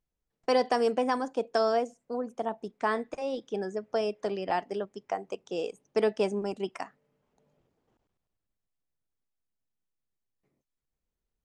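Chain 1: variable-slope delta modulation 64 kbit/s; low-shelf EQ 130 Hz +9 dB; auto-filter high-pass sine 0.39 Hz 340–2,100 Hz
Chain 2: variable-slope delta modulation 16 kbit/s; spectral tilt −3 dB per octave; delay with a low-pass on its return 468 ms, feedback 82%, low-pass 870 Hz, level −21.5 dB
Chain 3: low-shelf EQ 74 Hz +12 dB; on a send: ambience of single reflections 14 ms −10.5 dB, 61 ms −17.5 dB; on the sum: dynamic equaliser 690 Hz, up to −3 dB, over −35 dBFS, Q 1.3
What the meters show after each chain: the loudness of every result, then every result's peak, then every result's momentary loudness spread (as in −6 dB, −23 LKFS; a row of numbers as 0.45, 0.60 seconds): −29.0, −28.5, −31.5 LKFS; −11.0, −12.5, −14.0 dBFS; 19, 16, 10 LU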